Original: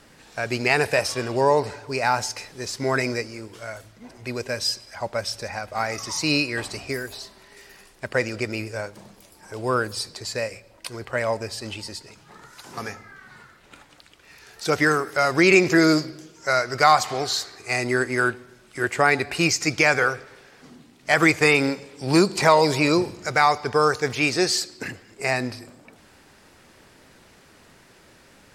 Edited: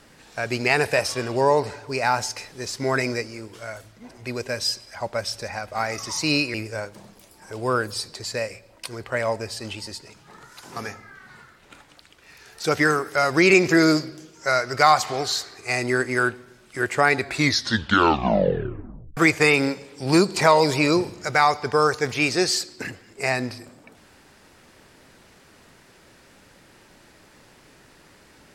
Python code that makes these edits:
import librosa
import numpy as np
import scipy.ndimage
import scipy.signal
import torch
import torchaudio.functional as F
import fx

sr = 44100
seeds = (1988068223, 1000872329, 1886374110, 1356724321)

y = fx.edit(x, sr, fx.cut(start_s=6.54, length_s=2.01),
    fx.tape_stop(start_s=19.21, length_s=1.97), tone=tone)